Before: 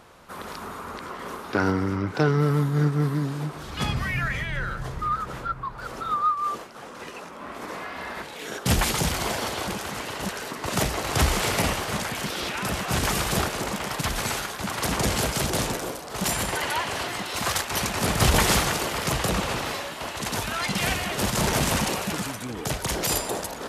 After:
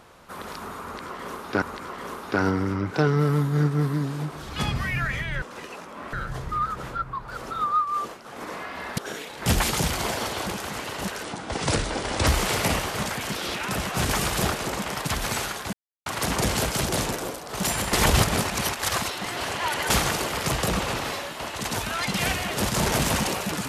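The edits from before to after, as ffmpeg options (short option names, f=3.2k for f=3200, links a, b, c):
-filter_complex "[0:a]asplit=12[a][b][c][d][e][f][g][h][i][j][k][l];[a]atrim=end=1.622[m];[b]atrim=start=0.828:end=4.632[n];[c]atrim=start=6.858:end=7.572[o];[d]atrim=start=4.628:end=6.862[p];[e]atrim=start=7.568:end=8.182[q];[f]atrim=start=8.178:end=8.672,asetpts=PTS-STARTPTS,areverse[r];[g]atrim=start=8.668:end=10.444[s];[h]atrim=start=10.44:end=11.21,asetpts=PTS-STARTPTS,asetrate=32634,aresample=44100[t];[i]atrim=start=11.206:end=14.67,asetpts=PTS-STARTPTS,afade=t=out:st=3.46:d=0.004:c=hsin,apad=pad_dur=0.33[u];[j]atrim=start=14.67:end=16.542,asetpts=PTS-STARTPTS,afade=t=in:d=0.004:c=hsin[v];[k]atrim=start=16.538:end=18.512,asetpts=PTS-STARTPTS,areverse[w];[l]atrim=start=18.508[x];[m][n]acrossfade=d=0.004:c1=hsin:c2=hsin[y];[y][o]acrossfade=d=0.004:c1=hsin:c2=hsin[z];[z][p]acrossfade=d=0.004:c1=hsin:c2=hsin[aa];[aa][q]acrossfade=d=0.004:c1=hsin:c2=hsin[ab];[ab][r]acrossfade=d=0.004:c1=hsin:c2=hsin[ac];[ac][s]acrossfade=d=0.004:c1=hsin:c2=hsin[ad];[ad][t]acrossfade=d=0.004:c1=hsin:c2=hsin[ae];[u][v]concat=n=2:v=0:a=1[af];[ae][af]acrossfade=d=0.004:c1=hsin:c2=hsin[ag];[ag][w]acrossfade=d=0.004:c1=hsin:c2=hsin[ah];[ah][x]acrossfade=d=0.004:c1=hsin:c2=hsin"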